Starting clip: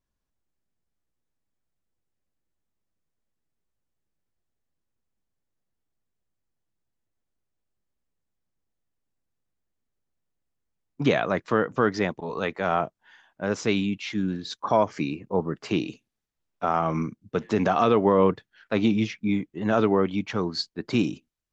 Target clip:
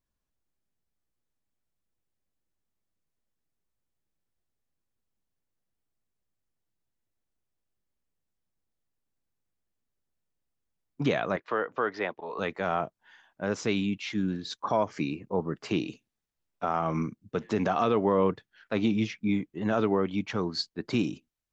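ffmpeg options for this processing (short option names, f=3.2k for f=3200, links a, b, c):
-filter_complex "[0:a]asettb=1/sr,asplit=3[a][b][c];[a]atrim=end=11.364[d];[b]atrim=start=11.36:end=12.39,asetpts=PTS-STARTPTS,afade=t=in:d=0.004:c=qsin,afade=t=out:st=1.026:d=0.004:c=qsin,acrossover=split=370 4200:gain=0.158 1 0.0708[e][f][g];[e][f][g]amix=inputs=3:normalize=0[h];[c]atrim=start=12.386[i];[d][h]acrossfade=d=0.004:c1=hsin:c2=qsin[j];[j][i]acrossfade=d=0.004:c1=qsin:c2=hsin,asplit=2[k][l];[l]alimiter=limit=-16dB:level=0:latency=1:release=201,volume=1.5dB[m];[k][m]amix=inputs=2:normalize=0,volume=-9dB"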